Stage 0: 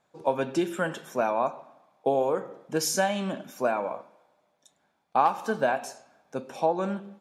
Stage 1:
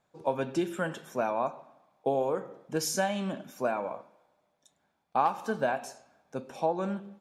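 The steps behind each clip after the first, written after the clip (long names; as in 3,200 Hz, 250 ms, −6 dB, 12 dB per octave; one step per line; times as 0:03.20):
low-shelf EQ 110 Hz +9 dB
level −4 dB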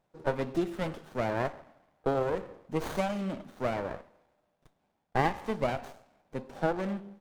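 windowed peak hold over 17 samples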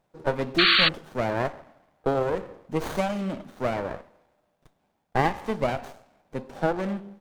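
sound drawn into the spectrogram noise, 0:00.58–0:00.89, 1,100–4,600 Hz −23 dBFS
level +4 dB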